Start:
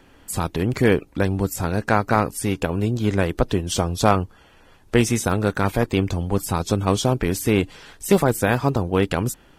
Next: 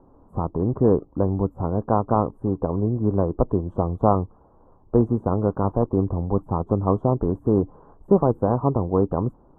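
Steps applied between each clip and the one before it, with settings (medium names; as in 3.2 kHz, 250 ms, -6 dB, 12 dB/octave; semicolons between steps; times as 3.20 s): elliptic low-pass 1.1 kHz, stop band 50 dB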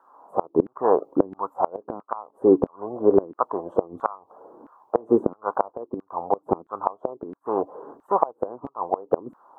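LFO high-pass saw down 1.5 Hz 250–1500 Hz; inverted gate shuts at -11 dBFS, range -25 dB; trim +6.5 dB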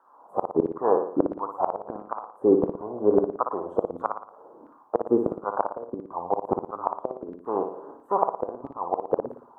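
flutter echo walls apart 9.9 m, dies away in 0.55 s; trim -3 dB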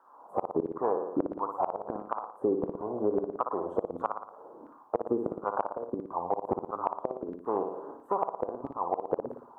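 compression 5:1, threshold -25 dBFS, peak gain reduction 11.5 dB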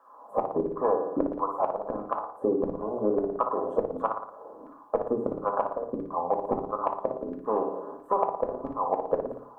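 reverberation RT60 0.35 s, pre-delay 4 ms, DRR 4.5 dB; trim +1.5 dB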